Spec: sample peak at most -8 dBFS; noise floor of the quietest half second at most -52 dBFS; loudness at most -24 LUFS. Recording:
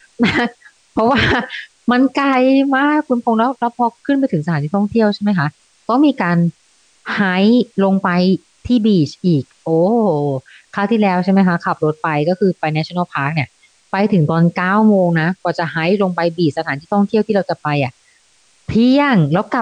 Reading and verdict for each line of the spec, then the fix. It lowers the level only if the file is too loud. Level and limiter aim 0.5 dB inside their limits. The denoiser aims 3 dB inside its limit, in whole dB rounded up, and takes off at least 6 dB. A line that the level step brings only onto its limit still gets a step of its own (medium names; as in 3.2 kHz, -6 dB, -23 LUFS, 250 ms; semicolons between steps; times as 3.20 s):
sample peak -5.0 dBFS: fail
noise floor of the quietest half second -54 dBFS: pass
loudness -15.5 LUFS: fail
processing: trim -9 dB